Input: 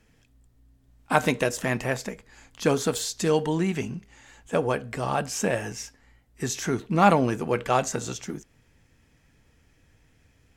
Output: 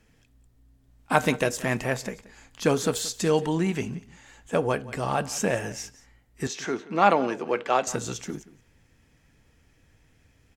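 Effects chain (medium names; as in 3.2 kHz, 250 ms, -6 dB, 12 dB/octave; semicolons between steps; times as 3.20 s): 6.47–7.87 s: three-band isolator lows -21 dB, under 240 Hz, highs -19 dB, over 6.2 kHz; delay 177 ms -19 dB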